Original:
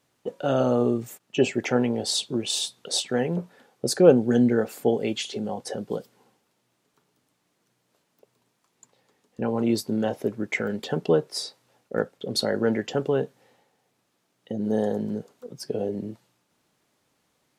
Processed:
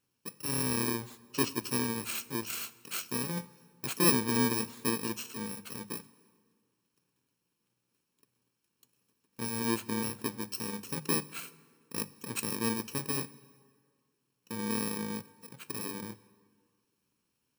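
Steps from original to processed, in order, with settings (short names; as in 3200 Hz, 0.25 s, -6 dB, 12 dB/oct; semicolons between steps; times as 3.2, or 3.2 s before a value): FFT order left unsorted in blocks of 64 samples; high shelf 8300 Hz -6.5 dB; notches 50/100/150/200 Hz; plate-style reverb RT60 1.9 s, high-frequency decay 0.7×, DRR 17.5 dB; gain -6.5 dB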